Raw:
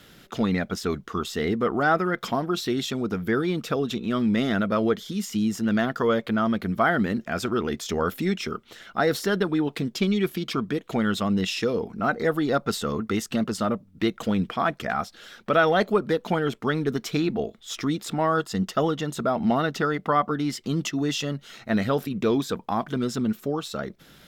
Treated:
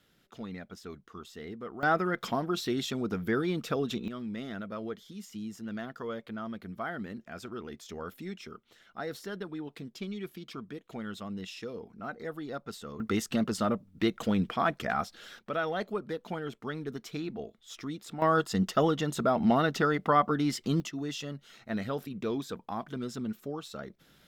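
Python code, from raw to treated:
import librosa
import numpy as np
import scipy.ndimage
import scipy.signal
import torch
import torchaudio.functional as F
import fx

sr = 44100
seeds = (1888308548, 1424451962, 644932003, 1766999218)

y = fx.gain(x, sr, db=fx.steps((0.0, -17.0), (1.83, -5.0), (4.08, -15.0), (13.0, -3.5), (15.39, -12.0), (18.22, -2.0), (20.8, -10.0)))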